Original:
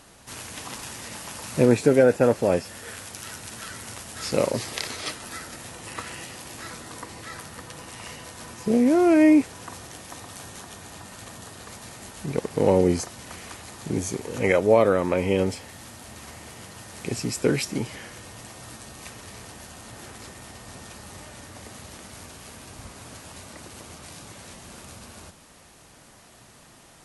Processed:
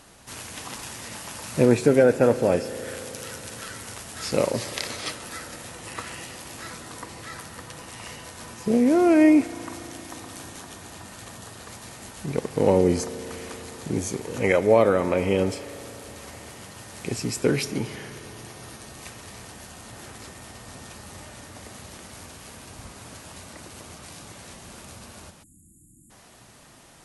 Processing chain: 17.51–18.88 s: band-stop 7.7 kHz, Q 7.8; spring tank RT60 3.8 s, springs 35 ms, chirp 50 ms, DRR 14 dB; 25.43–26.11 s: spectral selection erased 350–6700 Hz

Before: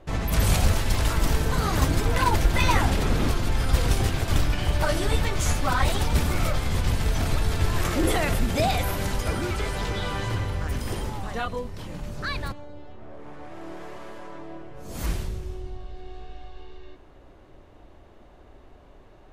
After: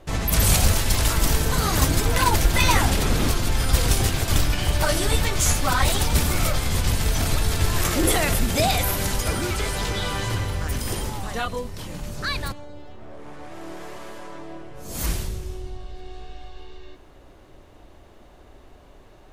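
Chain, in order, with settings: treble shelf 4.2 kHz +10 dB; trim +1.5 dB

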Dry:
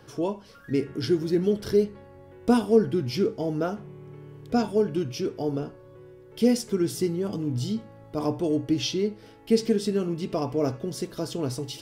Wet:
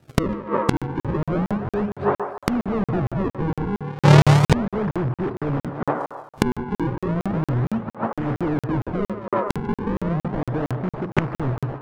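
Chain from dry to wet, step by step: median filter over 25 samples; treble shelf 3.9 kHz -9 dB; gate -42 dBFS, range -41 dB; in parallel at -10.5 dB: bit crusher 5-bit; on the sum: FFT filter 150 Hz 0 dB, 840 Hz -27 dB, 1.5 kHz -28 dB, 5.2 kHz +13 dB; overdrive pedal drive 35 dB, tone 2.8 kHz, clips at -15 dBFS; decimation with a swept rate 40×, swing 160% 0.34 Hz; low-pass that closes with the level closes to 1.3 kHz, closed at -24.5 dBFS; on a send: band-passed feedback delay 145 ms, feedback 46%, band-pass 900 Hz, level -6 dB; on the sum: inverted gate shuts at -24 dBFS, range -25 dB; crackling interface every 0.23 s, samples 2048, zero, from 0.77 s; loudness maximiser +27 dB; trim -1 dB

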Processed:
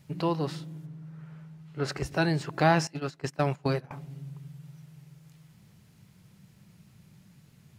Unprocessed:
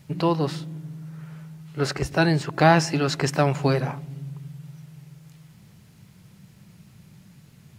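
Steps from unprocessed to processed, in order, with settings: 0.85–1.87 s: low-pass 2.1 kHz -> 3.8 kHz 6 dB/octave; 2.87–3.91 s: gate -21 dBFS, range -20 dB; trim -6 dB

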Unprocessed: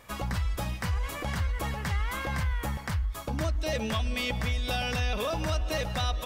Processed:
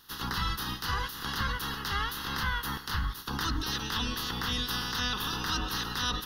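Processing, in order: spectral peaks clipped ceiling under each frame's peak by 24 dB; hard clipper -16 dBFS, distortion -52 dB; static phaser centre 2.3 kHz, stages 6

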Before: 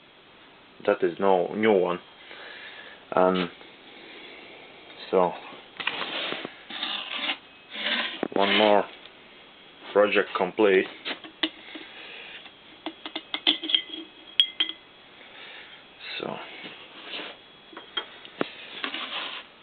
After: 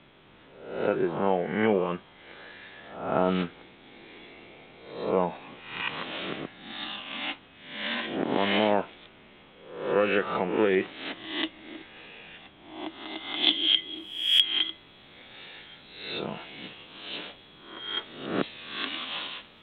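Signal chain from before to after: reverse spectral sustain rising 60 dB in 0.70 s; tone controls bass +9 dB, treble -9 dB, from 13.42 s treble +8 dB; trim -6 dB

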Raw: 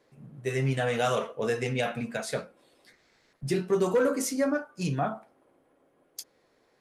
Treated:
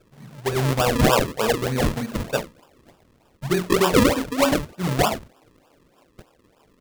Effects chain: graphic EQ 1/4/8 kHz +11/-4/-12 dB; decimation with a swept rate 41×, swing 100% 3.3 Hz; trim +5 dB

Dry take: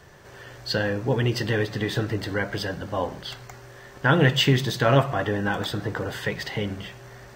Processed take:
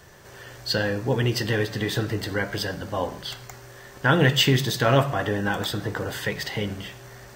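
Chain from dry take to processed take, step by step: treble shelf 5.7 kHz +8 dB; de-hum 144.2 Hz, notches 37

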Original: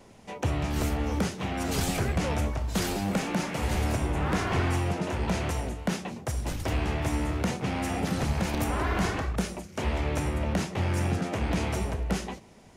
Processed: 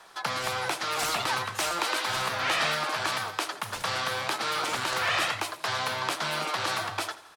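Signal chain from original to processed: three-band isolator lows -21 dB, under 390 Hz, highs -22 dB, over 6.2 kHz; on a send: feedback delay 143 ms, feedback 48%, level -17.5 dB; on the sum: speed mistake 45 rpm record played at 78 rpm; trim +5.5 dB

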